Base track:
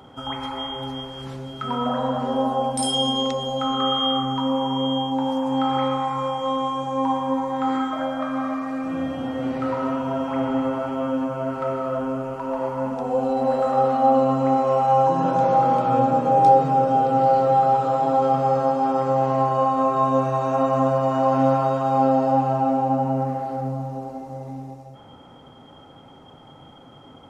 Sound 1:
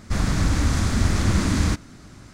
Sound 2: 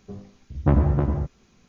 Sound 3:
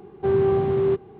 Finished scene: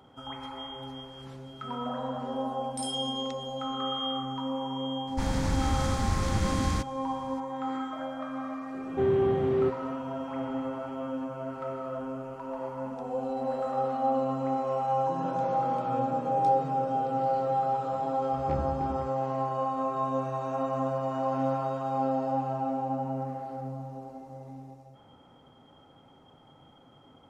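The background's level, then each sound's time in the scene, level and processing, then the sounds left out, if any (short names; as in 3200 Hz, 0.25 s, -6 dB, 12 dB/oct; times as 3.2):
base track -10 dB
5.07 add 1 -8 dB
8.74 add 3 -5 dB
17.82 add 2 -15.5 dB + tracing distortion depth 0.2 ms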